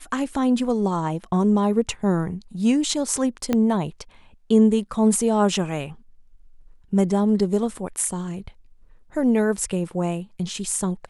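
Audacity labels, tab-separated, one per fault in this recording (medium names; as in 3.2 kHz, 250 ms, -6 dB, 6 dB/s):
3.530000	3.530000	pop -9 dBFS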